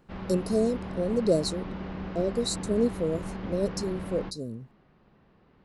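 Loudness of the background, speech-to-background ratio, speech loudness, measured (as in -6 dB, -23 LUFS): -37.5 LUFS, 8.0 dB, -29.5 LUFS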